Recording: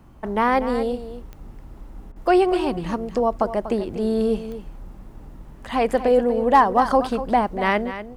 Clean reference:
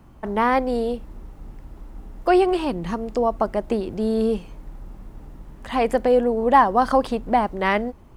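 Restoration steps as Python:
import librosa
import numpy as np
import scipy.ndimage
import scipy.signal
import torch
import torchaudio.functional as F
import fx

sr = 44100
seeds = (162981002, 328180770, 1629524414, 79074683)

y = fx.fix_declip(x, sr, threshold_db=-6.0)
y = fx.fix_declick_ar(y, sr, threshold=10.0)
y = fx.fix_interpolate(y, sr, at_s=(2.12,), length_ms=39.0)
y = fx.fix_echo_inverse(y, sr, delay_ms=242, level_db=-12.0)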